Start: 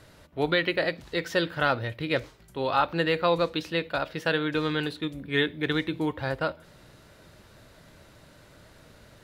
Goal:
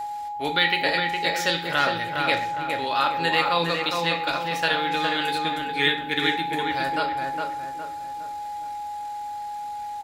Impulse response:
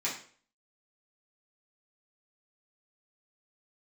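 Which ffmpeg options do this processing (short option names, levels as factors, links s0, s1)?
-filter_complex "[0:a]tiltshelf=f=1500:g=-6,aeval=exprs='val(0)+0.0282*sin(2*PI*830*n/s)':c=same,atempo=0.92,asplit=2[s0][s1];[s1]adelay=411,lowpass=f=2000:p=1,volume=0.708,asplit=2[s2][s3];[s3]adelay=411,lowpass=f=2000:p=1,volume=0.46,asplit=2[s4][s5];[s5]adelay=411,lowpass=f=2000:p=1,volume=0.46,asplit=2[s6][s7];[s7]adelay=411,lowpass=f=2000:p=1,volume=0.46,asplit=2[s8][s9];[s9]adelay=411,lowpass=f=2000:p=1,volume=0.46,asplit=2[s10][s11];[s11]adelay=411,lowpass=f=2000:p=1,volume=0.46[s12];[s0][s2][s4][s6][s8][s10][s12]amix=inputs=7:normalize=0,asplit=2[s13][s14];[1:a]atrim=start_sample=2205,highshelf=f=4900:g=7.5[s15];[s14][s15]afir=irnorm=-1:irlink=0,volume=0.376[s16];[s13][s16]amix=inputs=2:normalize=0"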